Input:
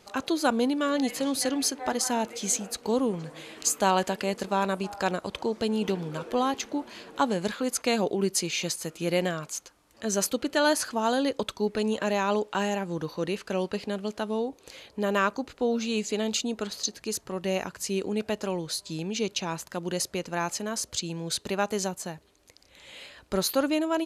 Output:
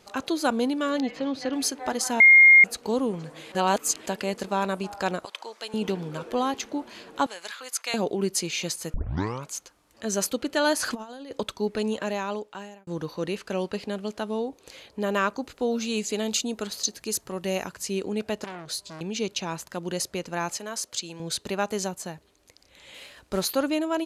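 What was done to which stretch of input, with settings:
1.00–1.53 s: distance through air 220 m
2.20–2.64 s: bleep 2.13 kHz -9.5 dBFS
3.52–4.06 s: reverse
5.25–5.74 s: high-pass 920 Hz
7.26–7.94 s: high-pass 1.1 kHz
8.94 s: tape start 0.52 s
10.83–11.31 s: compressor with a negative ratio -33 dBFS, ratio -0.5
11.85–12.87 s: fade out
15.42–17.75 s: treble shelf 7.8 kHz +8.5 dB
18.44–19.01 s: transformer saturation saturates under 2.8 kHz
20.57–21.20 s: high-pass 480 Hz 6 dB/octave
22.94–23.45 s: CVSD coder 64 kbps

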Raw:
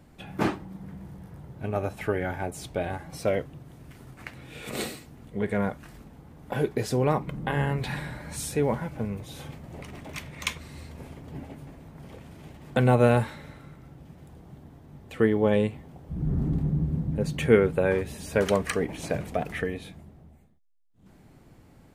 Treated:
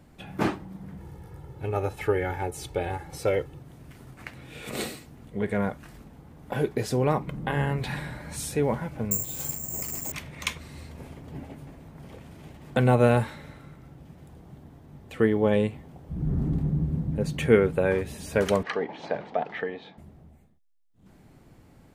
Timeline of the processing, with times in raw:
0.98–3.60 s: comb 2.3 ms
9.11–10.12 s: careless resampling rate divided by 6×, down filtered, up zero stuff
18.63–19.98 s: cabinet simulation 270–4200 Hz, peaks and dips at 300 Hz -4 dB, 850 Hz +8 dB, 2.5 kHz -6 dB

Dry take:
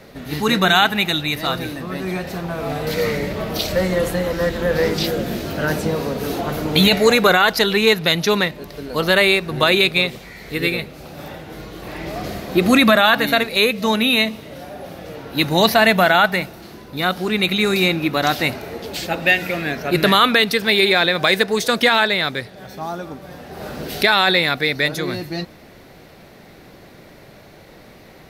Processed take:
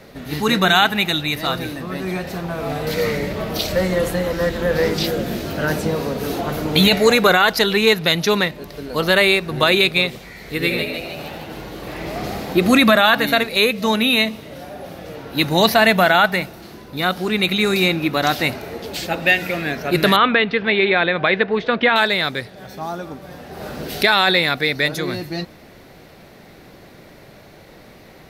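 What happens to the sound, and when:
10.45–12.53 s: frequency-shifting echo 153 ms, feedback 57%, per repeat +79 Hz, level -5.5 dB
20.16–21.96 s: low-pass 3 kHz 24 dB/octave

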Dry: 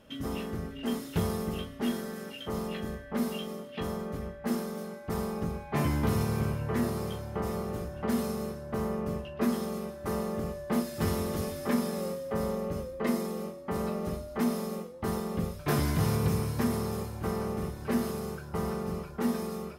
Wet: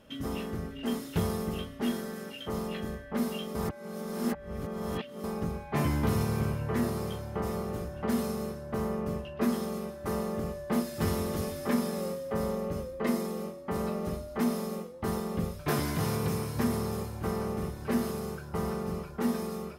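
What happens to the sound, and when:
3.55–5.24 s: reverse
15.69–16.55 s: high-pass 160 Hz 6 dB/octave

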